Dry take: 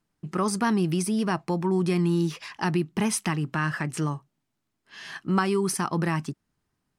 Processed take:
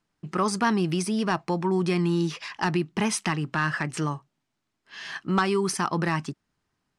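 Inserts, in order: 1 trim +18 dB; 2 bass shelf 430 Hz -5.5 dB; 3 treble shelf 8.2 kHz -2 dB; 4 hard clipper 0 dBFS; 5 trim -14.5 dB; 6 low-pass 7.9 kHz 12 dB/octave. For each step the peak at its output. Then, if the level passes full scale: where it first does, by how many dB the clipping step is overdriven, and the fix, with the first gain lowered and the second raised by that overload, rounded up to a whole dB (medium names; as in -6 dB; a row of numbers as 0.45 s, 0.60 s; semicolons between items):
+7.0 dBFS, +6.5 dBFS, +6.5 dBFS, 0.0 dBFS, -14.5 dBFS, -14.0 dBFS; step 1, 6.5 dB; step 1 +11 dB, step 5 -7.5 dB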